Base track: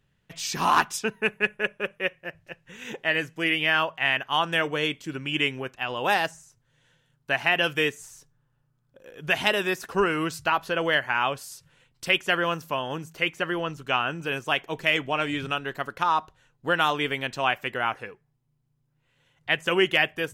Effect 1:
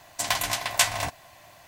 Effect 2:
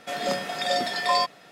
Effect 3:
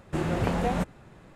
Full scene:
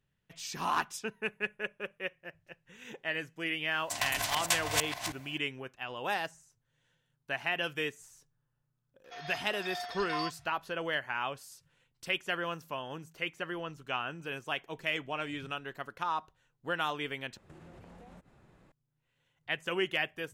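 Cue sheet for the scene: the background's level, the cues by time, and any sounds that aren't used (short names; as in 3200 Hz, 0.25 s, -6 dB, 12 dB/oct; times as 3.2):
base track -10 dB
3.71 add 1 -8 dB + reverse delay 0.471 s, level -1 dB
9.04 add 2 -13.5 dB + FFT band-pass 630–6700 Hz
17.37 replace with 3 -10.5 dB + compressor 16:1, threshold -38 dBFS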